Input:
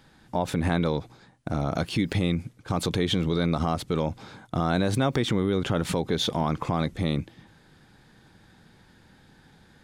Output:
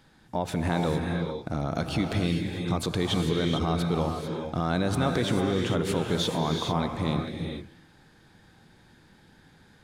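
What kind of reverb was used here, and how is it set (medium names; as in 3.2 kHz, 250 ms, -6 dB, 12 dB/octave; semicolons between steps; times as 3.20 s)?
gated-style reverb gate 470 ms rising, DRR 2.5 dB; trim -2.5 dB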